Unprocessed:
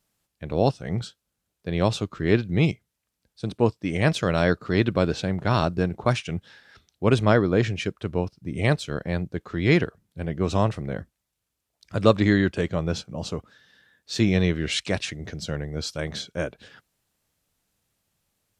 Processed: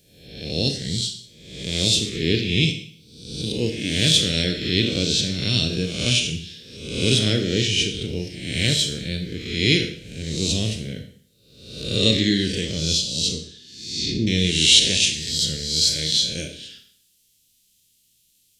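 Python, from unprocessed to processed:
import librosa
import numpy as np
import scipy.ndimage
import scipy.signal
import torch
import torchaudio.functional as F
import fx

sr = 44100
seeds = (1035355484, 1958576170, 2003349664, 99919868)

y = fx.spec_swells(x, sr, rise_s=0.85)
y = fx.env_lowpass_down(y, sr, base_hz=580.0, full_db=-18.5, at=(13.26, 14.27))
y = fx.curve_eq(y, sr, hz=(230.0, 460.0, 990.0, 3100.0), db=(0, -4, -28, 13))
y = fx.rev_schroeder(y, sr, rt60_s=0.56, comb_ms=25, drr_db=5.0)
y = F.gain(torch.from_numpy(y), -2.0).numpy()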